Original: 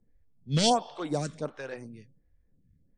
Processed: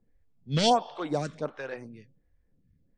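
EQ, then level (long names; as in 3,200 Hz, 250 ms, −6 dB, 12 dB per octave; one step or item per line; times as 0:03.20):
high-frequency loss of the air 60 metres
low-shelf EQ 380 Hz −6 dB
high-shelf EQ 4,700 Hz −6.5 dB
+4.0 dB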